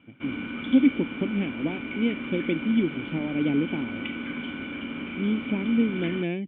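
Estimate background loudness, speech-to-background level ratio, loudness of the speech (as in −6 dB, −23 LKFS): −34.0 LKFS, 7.0 dB, −27.0 LKFS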